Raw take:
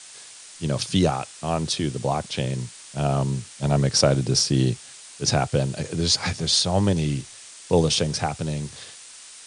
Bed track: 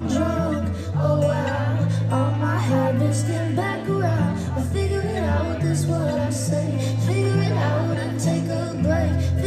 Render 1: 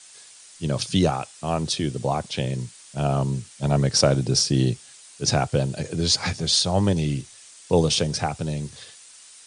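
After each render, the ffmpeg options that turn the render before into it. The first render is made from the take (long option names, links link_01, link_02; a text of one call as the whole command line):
ffmpeg -i in.wav -af "afftdn=noise_reduction=6:noise_floor=-44" out.wav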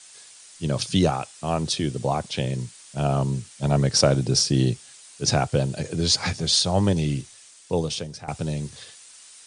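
ffmpeg -i in.wav -filter_complex "[0:a]asplit=2[link_01][link_02];[link_01]atrim=end=8.28,asetpts=PTS-STARTPTS,afade=type=out:start_time=7.18:duration=1.1:silence=0.158489[link_03];[link_02]atrim=start=8.28,asetpts=PTS-STARTPTS,afade=type=in:duration=0.004:curve=hsin:silence=0.158489[link_04];[link_03][link_04]concat=n=2:v=0:a=1" out.wav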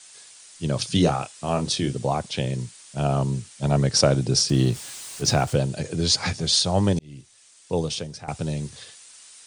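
ffmpeg -i in.wav -filter_complex "[0:a]asettb=1/sr,asplit=3[link_01][link_02][link_03];[link_01]atrim=end=0.924[link_04];[link_02]atrim=start=0.92:end=1.95,asetpts=PTS-STARTPTS,afade=type=in:duration=0.004:curve=qsin,afade=type=out:start_time=1.026:duration=0.004:curve=qsin,asplit=2[link_05][link_06];[link_06]adelay=29,volume=-7dB[link_07];[link_05][link_07]amix=inputs=2:normalize=0,atrim=end_sample=45423[link_08];[link_03]atrim=start=1.946[link_09];[link_04][link_08]acrossfade=duration=0.004:curve1=hsin:curve2=qsin[link_10];[link_10][link_09]acrossfade=duration=0.004:curve1=qsin:curve2=hsin,asettb=1/sr,asplit=3[link_11][link_12][link_13];[link_11]atrim=end=4.494[link_14];[link_12]atrim=start=4.49:end=5.56,asetpts=PTS-STARTPTS,afade=type=in:duration=0.004:curve=qsin,afade=type=out:start_time=1.066:duration=0.004:curve=qsin,aeval=exprs='val(0)+0.5*0.0178*sgn(val(0))':channel_layout=same[link_15];[link_13]atrim=start=5.556[link_16];[link_14][link_15]acrossfade=duration=0.004:curve1=hsin:curve2=qsin[link_17];[link_17][link_16]acrossfade=duration=0.004:curve1=qsin:curve2=hsin,asplit=2[link_18][link_19];[link_18]atrim=end=6.99,asetpts=PTS-STARTPTS,afade=type=out:start_time=6.986:duration=0.004:curve=hsin[link_20];[link_19]atrim=start=6.99,asetpts=PTS-STARTPTS,afade=type=in:duration=0.83[link_21];[link_20][link_21]concat=n=2:v=0:a=1" out.wav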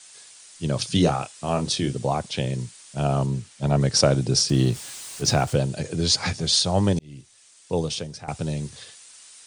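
ffmpeg -i in.wav -filter_complex "[0:a]asettb=1/sr,asplit=3[link_01][link_02][link_03];[link_01]atrim=end=3.264[link_04];[link_02]atrim=start=3.26:end=3.81,asetpts=PTS-STARTPTS,afade=type=in:duration=0.004:curve=qsin,afade=type=out:start_time=0.546:duration=0.004:curve=qsin,highshelf=frequency=5400:gain=-6.5[link_05];[link_03]atrim=start=3.806[link_06];[link_04][link_05]acrossfade=duration=0.004:curve1=hsin:curve2=qsin[link_07];[link_07][link_06]acrossfade=duration=0.004:curve1=qsin:curve2=hsin" out.wav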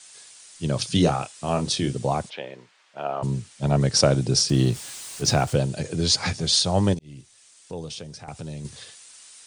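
ffmpeg -i in.wav -filter_complex "[0:a]asplit=3[link_01][link_02][link_03];[link_01]afade=type=out:start_time=2.29:duration=0.02[link_04];[link_02]highpass=560,lowpass=2200,afade=type=in:start_time=2.29:duration=0.02,afade=type=out:start_time=3.22:duration=0.02[link_05];[link_03]afade=type=in:start_time=3.22:duration=0.02[link_06];[link_04][link_05][link_06]amix=inputs=3:normalize=0,asettb=1/sr,asplit=3[link_07][link_08][link_09];[link_07]atrim=end=6.944[link_10];[link_08]atrim=start=6.94:end=8.65,asetpts=PTS-STARTPTS,afade=type=in:duration=0.004:curve=qsin,afade=type=out:start_time=1.706:duration=0.004:curve=qsin,acompressor=threshold=-37dB:ratio=2:attack=3.2:release=140:knee=1:detection=peak[link_11];[link_09]atrim=start=8.646[link_12];[link_10][link_11]acrossfade=duration=0.004:curve1=hsin:curve2=qsin[link_13];[link_13][link_12]acrossfade=duration=0.004:curve1=qsin:curve2=hsin" out.wav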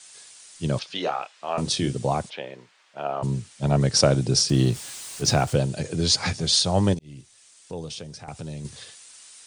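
ffmpeg -i in.wav -filter_complex "[0:a]asettb=1/sr,asplit=3[link_01][link_02][link_03];[link_01]atrim=end=0.794[link_04];[link_02]atrim=start=0.79:end=1.58,asetpts=PTS-STARTPTS,afade=type=in:duration=0.004:curve=qsin,afade=type=out:start_time=0.786:duration=0.004:curve=qsin,highpass=600,lowpass=3200[link_05];[link_03]atrim=start=1.576[link_06];[link_04][link_05]acrossfade=duration=0.004:curve1=hsin:curve2=qsin[link_07];[link_07][link_06]acrossfade=duration=0.004:curve1=qsin:curve2=hsin" out.wav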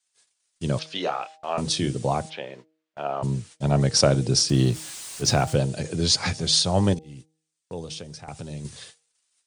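ffmpeg -i in.wav -af "agate=range=-29dB:threshold=-43dB:ratio=16:detection=peak,bandreject=frequency=157.7:width_type=h:width=4,bandreject=frequency=315.4:width_type=h:width=4,bandreject=frequency=473.1:width_type=h:width=4,bandreject=frequency=630.8:width_type=h:width=4,bandreject=frequency=788.5:width_type=h:width=4" out.wav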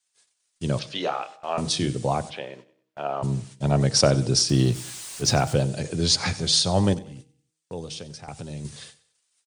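ffmpeg -i in.wav -af "aecho=1:1:95|190|285:0.112|0.046|0.0189" out.wav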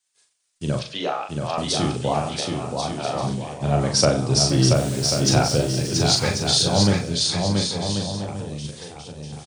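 ffmpeg -i in.wav -filter_complex "[0:a]asplit=2[link_01][link_02];[link_02]adelay=40,volume=-5dB[link_03];[link_01][link_03]amix=inputs=2:normalize=0,aecho=1:1:680|1088|1333|1480|1568:0.631|0.398|0.251|0.158|0.1" out.wav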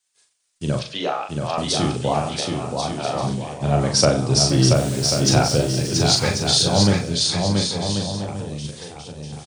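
ffmpeg -i in.wav -af "volume=1.5dB" out.wav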